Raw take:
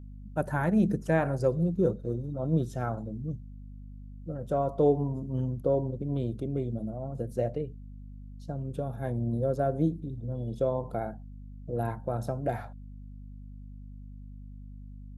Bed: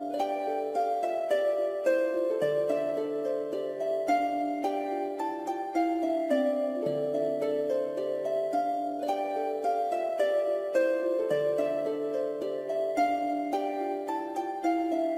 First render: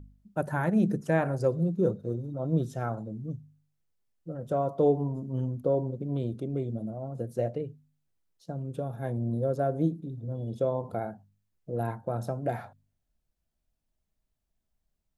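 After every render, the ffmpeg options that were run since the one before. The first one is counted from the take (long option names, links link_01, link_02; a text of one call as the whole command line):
ffmpeg -i in.wav -af "bandreject=frequency=50:width_type=h:width=4,bandreject=frequency=100:width_type=h:width=4,bandreject=frequency=150:width_type=h:width=4,bandreject=frequency=200:width_type=h:width=4,bandreject=frequency=250:width_type=h:width=4" out.wav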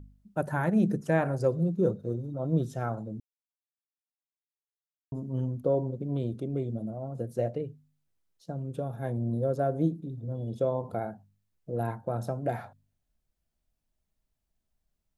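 ffmpeg -i in.wav -filter_complex "[0:a]asplit=3[link_01][link_02][link_03];[link_01]atrim=end=3.2,asetpts=PTS-STARTPTS,afade=type=out:start_time=3.196:duration=0.004:curve=hsin[link_04];[link_02]atrim=start=3.2:end=5.12,asetpts=PTS-STARTPTS,volume=0[link_05];[link_03]atrim=start=5.12,asetpts=PTS-STARTPTS,afade=type=in:duration=0.004:curve=hsin[link_06];[link_04][link_05][link_06]concat=n=3:v=0:a=1" out.wav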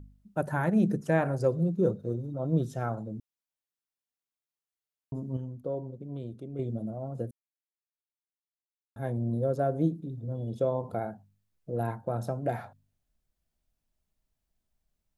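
ffmpeg -i in.wav -filter_complex "[0:a]asplit=5[link_01][link_02][link_03][link_04][link_05];[link_01]atrim=end=5.372[link_06];[link_02]atrim=start=5.368:end=6.592,asetpts=PTS-STARTPTS,volume=-7.5dB[link_07];[link_03]atrim=start=6.588:end=7.31,asetpts=PTS-STARTPTS,afade=type=out:start_time=0.718:duration=0.004:curve=hsin[link_08];[link_04]atrim=start=7.31:end=8.96,asetpts=PTS-STARTPTS,volume=0[link_09];[link_05]atrim=start=8.96,asetpts=PTS-STARTPTS,afade=type=in:duration=0.004:curve=hsin[link_10];[link_06][link_07]acrossfade=duration=0.004:curve1=hsin:curve2=hsin[link_11];[link_08][link_09][link_10]concat=n=3:v=0:a=1[link_12];[link_11][link_12]acrossfade=duration=0.004:curve1=hsin:curve2=hsin" out.wav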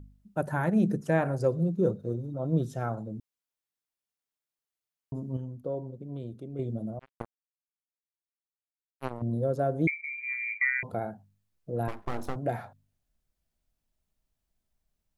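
ffmpeg -i in.wav -filter_complex "[0:a]asettb=1/sr,asplit=3[link_01][link_02][link_03];[link_01]atrim=end=6.994[link_04];[link_02]atrim=start=6.99:end=9.22,asetpts=PTS-STARTPTS,afade=type=in:duration=0.004:curve=qsin,afade=type=out:start_time=2.226:duration=0.004:curve=qsin,acrusher=bits=3:mix=0:aa=0.5[link_05];[link_03]atrim=start=9.216[link_06];[link_04][link_05]acrossfade=duration=0.004:curve1=hsin:curve2=qsin[link_07];[link_07][link_06]acrossfade=duration=0.004:curve1=qsin:curve2=hsin,asettb=1/sr,asplit=3[link_08][link_09][link_10];[link_08]atrim=end=9.874[link_11];[link_09]atrim=start=9.87:end=10.83,asetpts=PTS-STARTPTS,afade=type=in:duration=0.004:curve=qsin,afade=type=out:start_time=0.956:duration=0.004:curve=qsin,lowpass=frequency=2100:width_type=q:width=0.5098,lowpass=frequency=2100:width_type=q:width=0.6013,lowpass=frequency=2100:width_type=q:width=0.9,lowpass=frequency=2100:width_type=q:width=2.563,afreqshift=-2500[link_12];[link_10]atrim=start=10.826[link_13];[link_11][link_12]acrossfade=duration=0.004:curve1=hsin:curve2=qsin[link_14];[link_14][link_13]acrossfade=duration=0.004:curve1=qsin:curve2=hsin,asettb=1/sr,asplit=3[link_15][link_16][link_17];[link_15]atrim=end=11.884[link_18];[link_16]atrim=start=11.88:end=12.36,asetpts=PTS-STARTPTS,afade=type=in:duration=0.004:curve=qsin,afade=type=out:start_time=0.476:duration=0.004:curve=qsin,aeval=exprs='abs(val(0))':channel_layout=same[link_19];[link_17]atrim=start=12.356[link_20];[link_18][link_19]acrossfade=duration=0.004:curve1=hsin:curve2=qsin[link_21];[link_21][link_20]acrossfade=duration=0.004:curve1=qsin:curve2=hsin" out.wav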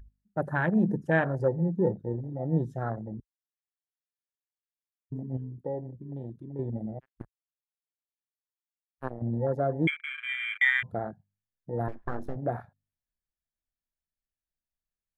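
ffmpeg -i in.wav -af "afwtdn=0.0224,equalizer=frequency=1700:width=5:gain=10.5" out.wav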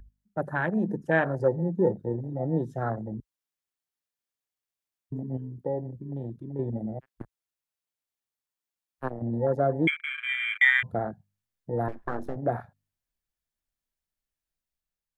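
ffmpeg -i in.wav -filter_complex "[0:a]acrossover=split=210[link_01][link_02];[link_01]alimiter=level_in=9dB:limit=-24dB:level=0:latency=1:release=353,volume=-9dB[link_03];[link_03][link_02]amix=inputs=2:normalize=0,dynaudnorm=framelen=810:gausssize=3:maxgain=3.5dB" out.wav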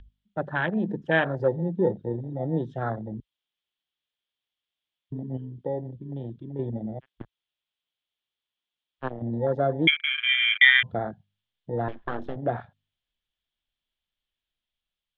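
ffmpeg -i in.wav -af "lowpass=frequency=3300:width_type=q:width=5.5" out.wav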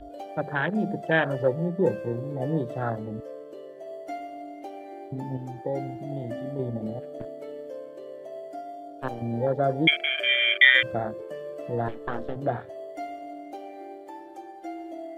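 ffmpeg -i in.wav -i bed.wav -filter_complex "[1:a]volume=-9.5dB[link_01];[0:a][link_01]amix=inputs=2:normalize=0" out.wav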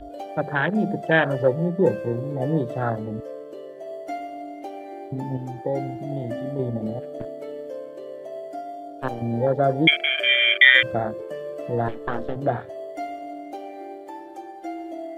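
ffmpeg -i in.wav -af "volume=4dB,alimiter=limit=-1dB:level=0:latency=1" out.wav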